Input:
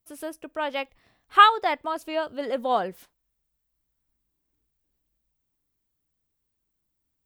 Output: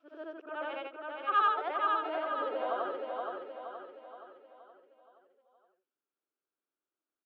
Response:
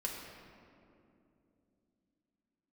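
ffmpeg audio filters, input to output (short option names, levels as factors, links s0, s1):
-af "afftfilt=real='re':imag='-im':win_size=8192:overlap=0.75,aemphasis=mode=reproduction:type=50fm,acompressor=threshold=0.0224:ratio=1.5,highpass=f=330:w=0.5412,highpass=f=330:w=1.3066,equalizer=f=370:t=q:w=4:g=3,equalizer=f=910:t=q:w=4:g=-3,equalizer=f=1400:t=q:w=4:g=7,equalizer=f=2000:t=q:w=4:g=-8,lowpass=f=3300:w=0.5412,lowpass=f=3300:w=1.3066,aecho=1:1:472|944|1416|1888|2360|2832:0.668|0.327|0.16|0.0786|0.0385|0.0189,acontrast=55,volume=0.376"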